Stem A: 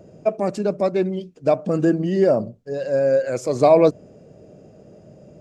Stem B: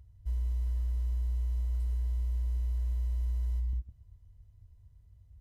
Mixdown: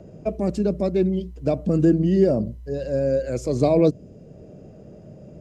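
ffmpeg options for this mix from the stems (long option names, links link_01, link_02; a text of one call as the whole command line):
ffmpeg -i stem1.wav -i stem2.wav -filter_complex "[0:a]bass=frequency=250:gain=3,treble=frequency=4000:gain=-5,acrossover=split=460|3000[link_01][link_02][link_03];[link_02]acompressor=threshold=-56dB:ratio=1.5[link_04];[link_01][link_04][link_03]amix=inputs=3:normalize=0,volume=1.5dB[link_05];[1:a]acompressor=threshold=-39dB:ratio=3,volume=-1.5dB[link_06];[link_05][link_06]amix=inputs=2:normalize=0" out.wav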